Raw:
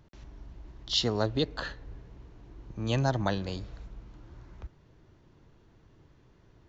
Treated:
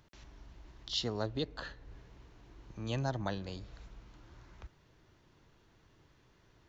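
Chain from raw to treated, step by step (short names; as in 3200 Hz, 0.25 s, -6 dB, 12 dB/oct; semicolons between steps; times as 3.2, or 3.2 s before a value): mismatched tape noise reduction encoder only; gain -7.5 dB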